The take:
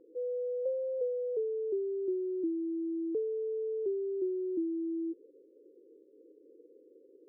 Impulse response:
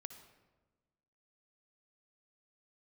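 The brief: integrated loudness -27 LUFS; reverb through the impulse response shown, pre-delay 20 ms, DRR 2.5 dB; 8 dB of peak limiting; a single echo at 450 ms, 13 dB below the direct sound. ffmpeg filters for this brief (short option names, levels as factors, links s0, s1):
-filter_complex "[0:a]alimiter=level_in=2.99:limit=0.0631:level=0:latency=1,volume=0.335,aecho=1:1:450:0.224,asplit=2[s0][s1];[1:a]atrim=start_sample=2205,adelay=20[s2];[s1][s2]afir=irnorm=-1:irlink=0,volume=1.33[s3];[s0][s3]amix=inputs=2:normalize=0,volume=2.82"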